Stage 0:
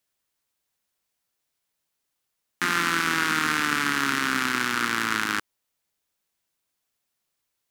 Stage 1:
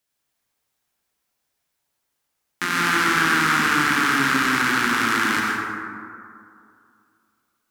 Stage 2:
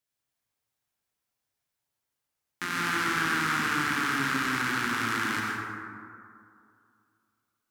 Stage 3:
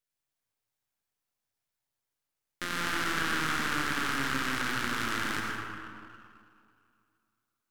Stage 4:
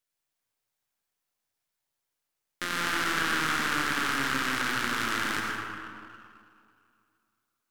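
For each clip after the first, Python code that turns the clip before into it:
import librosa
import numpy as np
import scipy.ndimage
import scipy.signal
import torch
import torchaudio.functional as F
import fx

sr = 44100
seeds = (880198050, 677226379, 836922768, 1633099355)

y1 = fx.rev_plate(x, sr, seeds[0], rt60_s=2.4, hf_ratio=0.35, predelay_ms=80, drr_db=-3.5)
y2 = fx.peak_eq(y1, sr, hz=110.0, db=8.5, octaves=0.49)
y2 = F.gain(torch.from_numpy(y2), -8.5).numpy()
y3 = np.where(y2 < 0.0, 10.0 ** (-12.0 / 20.0) * y2, y2)
y4 = fx.low_shelf(y3, sr, hz=190.0, db=-6.0)
y4 = F.gain(torch.from_numpy(y4), 3.0).numpy()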